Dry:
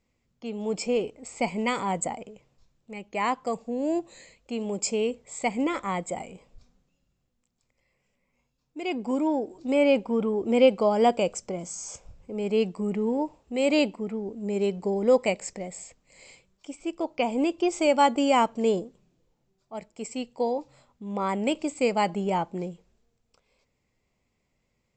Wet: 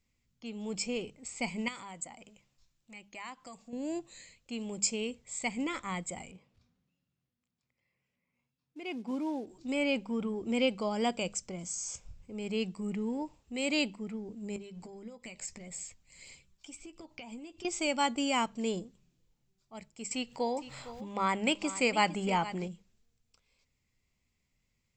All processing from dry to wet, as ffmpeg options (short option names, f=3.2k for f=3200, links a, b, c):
-filter_complex "[0:a]asettb=1/sr,asplit=3[a][b][c];[a]atrim=end=1.684[d];[b]atrim=start=1.68:end=3.73,asetpts=PTS-STARTPTS,afade=t=in:d=0.004:c=qsin,afade=t=out:st=2.046:d=0.004:c=qsin,bass=f=250:g=-7,treble=f=4k:g=1,bandreject=f=440:w=5.3,acompressor=threshold=-40dB:ratio=2:attack=3.2:release=140:knee=1:detection=peak[e];[c]atrim=start=3.726[f];[d][e]acrossfade=d=0.004:c1=hsin:c2=qsin[g];[g][f]acrossfade=d=0.004:c1=qsin:c2=hsin,asettb=1/sr,asplit=3[h][i][j];[h]atrim=end=6.314[k];[i]atrim=start=6.31:end=9.47,asetpts=PTS-STARTPTS,afade=t=in:d=0.004:c=qsin,afade=t=out:st=3.156:d=0.004:c=qsin,highshelf=f=2.9k:g=-9.5,acrusher=bits=8:mode=log:mix=0:aa=0.000001,highpass=120,lowpass=5.5k[l];[j]atrim=start=9.466[m];[k][l]acrossfade=d=0.004:c1=hsin:c2=qsin[n];[n][m]acrossfade=d=0.004:c1=qsin:c2=hsin,asettb=1/sr,asplit=3[o][p][q];[o]atrim=end=14.564[r];[p]atrim=start=14.56:end=17.65,asetpts=PTS-STARTPTS,afade=t=in:d=0.004:c=qsin,afade=t=out:st=3.086:d=0.004:c=qsin,aphaser=in_gain=1:out_gain=1:delay=1.4:decay=0.32:speed=1.7:type=triangular,acompressor=threshold=-35dB:ratio=10:attack=3.2:release=140:knee=1:detection=peak,asplit=2[s][t];[t]adelay=13,volume=-10.5dB[u];[s][u]amix=inputs=2:normalize=0,atrim=end_sample=136269[v];[q]atrim=start=17.646[w];[r][v]acrossfade=d=0.004:c1=hsin:c2=qsin[x];[x][w]acrossfade=d=0.004:c1=qsin:c2=hsin,asettb=1/sr,asplit=3[y][z][aa];[y]atrim=end=20.114[ab];[z]atrim=start=20.11:end=22.68,asetpts=PTS-STARTPTS,afade=t=in:d=0.004:c=qsin,afade=t=out:st=2.566:d=0.004:c=qsin,equalizer=f=1.2k:w=0.31:g=7.5,acompressor=mode=upward:threshold=-28dB:ratio=2.5:attack=3.2:release=140:knee=2.83:detection=peak,aecho=1:1:459:0.188,atrim=end_sample=113337[ac];[aa]atrim=start=22.676[ad];[ab][ac]acrossfade=d=0.004:c1=hsin:c2=qsin[ae];[ae][ad]acrossfade=d=0.004:c1=qsin:c2=hsin,equalizer=f=560:t=o:w=2.5:g=-12.5,bandreject=f=50:t=h:w=6,bandreject=f=100:t=h:w=6,bandreject=f=150:t=h:w=6,bandreject=f=200:t=h:w=6"